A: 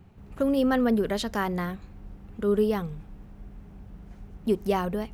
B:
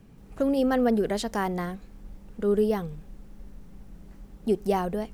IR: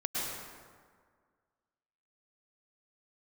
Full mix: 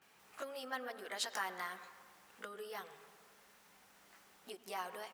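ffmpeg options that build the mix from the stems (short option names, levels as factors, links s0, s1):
-filter_complex "[0:a]aemphasis=mode=reproduction:type=bsi,acompressor=threshold=0.0282:ratio=4,volume=0.596,asplit=2[s0][s1];[s1]volume=0.376[s2];[1:a]acompressor=threshold=0.0282:ratio=6,adelay=17,volume=1.33[s3];[2:a]atrim=start_sample=2205[s4];[s2][s4]afir=irnorm=-1:irlink=0[s5];[s0][s3][s5]amix=inputs=3:normalize=0,highpass=1200"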